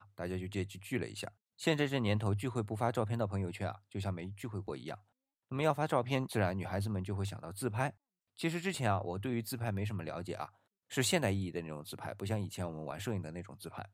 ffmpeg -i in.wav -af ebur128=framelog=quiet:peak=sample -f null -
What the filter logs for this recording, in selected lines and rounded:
Integrated loudness:
  I:         -36.6 LUFS
  Threshold: -46.9 LUFS
Loudness range:
  LRA:         2.1 LU
  Threshold: -56.7 LUFS
  LRA low:   -37.7 LUFS
  LRA high:  -35.6 LUFS
Sample peak:
  Peak:      -14.6 dBFS